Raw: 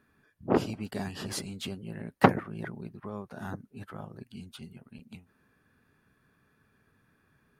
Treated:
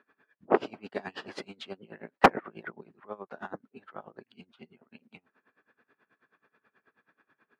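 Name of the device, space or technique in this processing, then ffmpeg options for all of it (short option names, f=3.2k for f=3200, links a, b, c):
helicopter radio: -filter_complex "[0:a]highpass=400,lowpass=2.7k,aeval=exprs='val(0)*pow(10,-22*(0.5-0.5*cos(2*PI*9.3*n/s))/20)':c=same,asoftclip=type=hard:threshold=-16dB,asettb=1/sr,asplit=3[a][b][c];[a]atrim=end=4.414[d];[b]atrim=start=4.41:end=4.89,asetpts=PTS-STARTPTS,afade=t=in:d=0.004:c=qsin,afade=t=out:st=0.476:d=0.004:c=qsin,highshelf=f=4.8k:g=-9.5[e];[c]atrim=start=4.886[f];[d][e]acrossfade=d=0.004:c1=hsin:c2=qsin[g];[g][f]acrossfade=d=0.004:c1=qsin:c2=hsin,volume=8dB"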